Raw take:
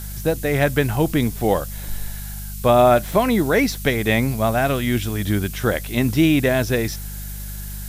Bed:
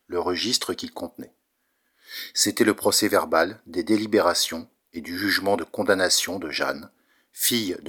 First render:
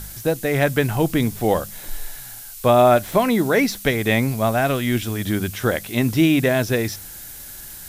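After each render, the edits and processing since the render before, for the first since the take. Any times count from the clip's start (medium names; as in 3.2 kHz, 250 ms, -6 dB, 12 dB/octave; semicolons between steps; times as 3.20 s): de-hum 50 Hz, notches 4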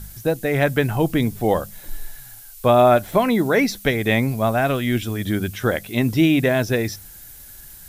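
noise reduction 7 dB, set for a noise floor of -37 dBFS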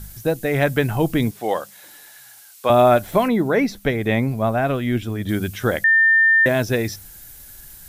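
1.31–2.70 s: frequency weighting A; 3.28–5.29 s: treble shelf 2.7 kHz -9.5 dB; 5.84–6.46 s: bleep 1.8 kHz -11 dBFS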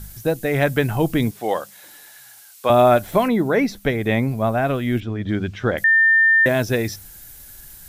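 5.00–5.78 s: distance through air 160 m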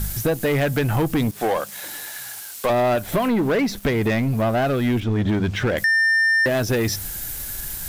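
compression 4:1, threshold -26 dBFS, peak gain reduction 13 dB; waveshaping leveller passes 3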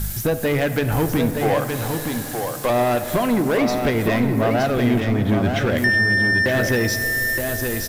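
on a send: delay 919 ms -5.5 dB; on the sum: plate-style reverb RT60 4.2 s, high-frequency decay 0.3×, DRR 9 dB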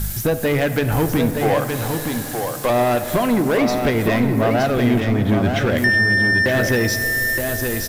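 trim +1.5 dB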